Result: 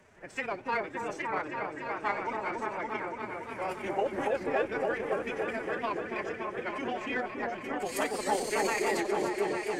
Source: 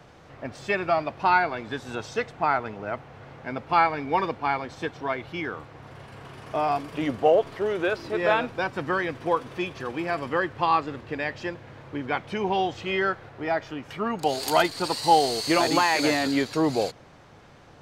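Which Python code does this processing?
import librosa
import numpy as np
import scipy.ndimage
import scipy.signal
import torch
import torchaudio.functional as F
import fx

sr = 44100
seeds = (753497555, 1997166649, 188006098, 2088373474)

p1 = fx.graphic_eq(x, sr, hz=(125, 1000, 2000, 4000, 8000), db=(-9, -5, 6, -10, 8))
p2 = fx.stretch_grains(p1, sr, factor=0.55, grain_ms=61.0)
p3 = 10.0 ** (-23.5 / 20.0) * np.tanh(p2 / 10.0 ** (-23.5 / 20.0))
p4 = p2 + F.gain(torch.from_numpy(p3), -11.0).numpy()
p5 = fx.pitch_keep_formants(p4, sr, semitones=4.5)
p6 = p5 + fx.echo_opening(p5, sr, ms=284, hz=750, octaves=1, feedback_pct=70, wet_db=0, dry=0)
p7 = fx.record_warp(p6, sr, rpm=78.0, depth_cents=100.0)
y = F.gain(torch.from_numpy(p7), -8.0).numpy()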